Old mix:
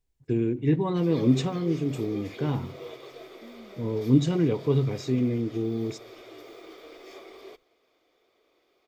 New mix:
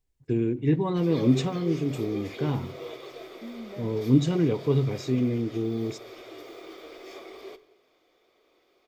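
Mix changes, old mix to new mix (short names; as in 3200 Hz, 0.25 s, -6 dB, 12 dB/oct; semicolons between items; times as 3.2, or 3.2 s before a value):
second voice +8.0 dB; background: send on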